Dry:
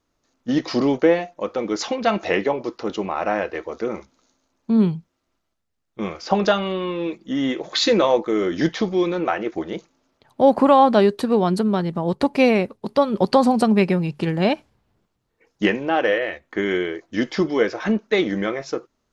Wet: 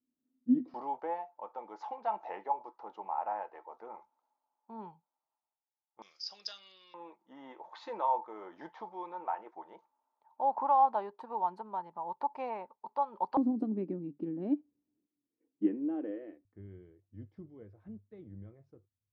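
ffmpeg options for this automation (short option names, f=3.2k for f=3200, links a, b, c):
-af "asetnsamples=n=441:p=0,asendcmd='0.74 bandpass f 870;6.02 bandpass f 5000;6.94 bandpass f 900;13.37 bandpass f 290;16.45 bandpass f 100',bandpass=f=250:t=q:w=12:csg=0"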